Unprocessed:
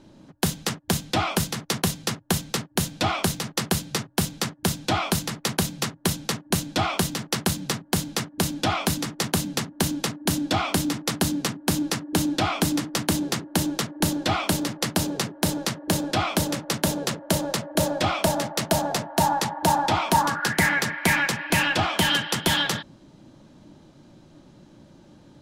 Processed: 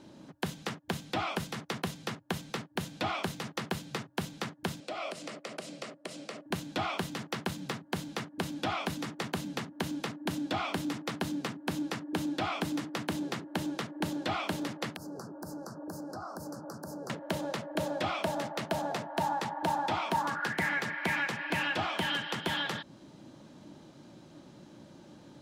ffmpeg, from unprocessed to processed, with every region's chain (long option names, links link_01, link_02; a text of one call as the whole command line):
ffmpeg -i in.wav -filter_complex "[0:a]asettb=1/sr,asplit=3[link_01][link_02][link_03];[link_01]atrim=end=4.804[link_04];[link_02]atrim=start=4.8:end=6.46,asetpts=PTS-STARTPTS,afade=type=in:duration=0.004:curve=qsin,afade=type=out:start_time=1.656:duration=0.004:curve=qsin,acompressor=threshold=-30dB:ratio=6:attack=3.2:release=140:knee=1:detection=peak,highpass=310,equalizer=frequency=590:width_type=q:width=4:gain=10,equalizer=frequency=900:width_type=q:width=4:gain=-9,equalizer=frequency=1600:width_type=q:width=4:gain=-6,equalizer=frequency=3600:width_type=q:width=4:gain=-5,equalizer=frequency=6300:width_type=q:width=4:gain=-5,lowpass=frequency=9000:width=0.5412,lowpass=frequency=9000:width=1.3066[link_05];[link_03]atrim=start=6.456[link_06];[link_04][link_05]acrossfade=duration=0.004:curve1=hsin:curve2=qsin[link_07];[link_07][link_06]acrossfade=duration=0.004:curve1=qsin:curve2=hsin,asettb=1/sr,asplit=3[link_08][link_09][link_10];[link_08]atrim=end=14.964[link_11];[link_09]atrim=start=14.96:end=17.1,asetpts=PTS-STARTPTS,afade=type=in:duration=0.004:curve=qsin,afade=type=out:start_time=2.136:duration=0.004:curve=qsin,equalizer=frequency=7500:width_type=o:width=1.1:gain=-4.5,acompressor=threshold=-37dB:ratio=5:attack=3.2:release=140:knee=1:detection=peak,asuperstop=centerf=2700:order=12:qfactor=0.88[link_12];[link_10]atrim=start=17.096[link_13];[link_11][link_12]acrossfade=duration=0.004:curve1=hsin:curve2=qsin[link_14];[link_14][link_13]acrossfade=duration=0.004:curve1=qsin:curve2=hsin,acompressor=threshold=-34dB:ratio=2,highpass=frequency=160:poles=1,acrossover=split=3500[link_15][link_16];[link_16]acompressor=threshold=-45dB:ratio=4:attack=1:release=60[link_17];[link_15][link_17]amix=inputs=2:normalize=0" out.wav